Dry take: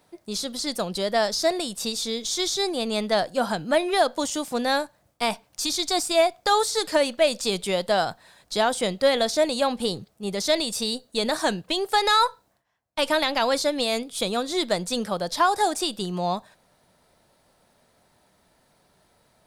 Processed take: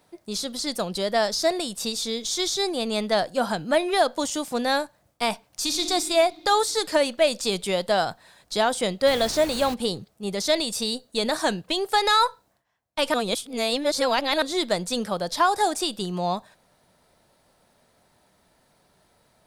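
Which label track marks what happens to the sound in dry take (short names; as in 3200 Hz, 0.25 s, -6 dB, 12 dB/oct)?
5.470000	5.880000	reverb throw, RT60 2.7 s, DRR 5 dB
9.060000	9.730000	added noise pink -37 dBFS
13.140000	14.420000	reverse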